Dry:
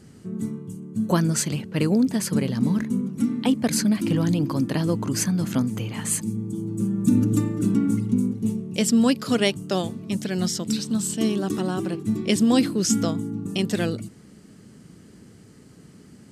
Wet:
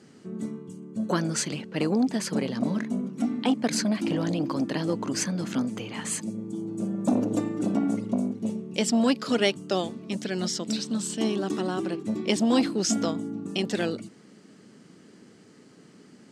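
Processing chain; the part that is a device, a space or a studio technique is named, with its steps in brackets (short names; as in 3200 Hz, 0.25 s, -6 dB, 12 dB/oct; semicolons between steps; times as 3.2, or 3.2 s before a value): public-address speaker with an overloaded transformer (core saturation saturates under 350 Hz; BPF 240–6700 Hz)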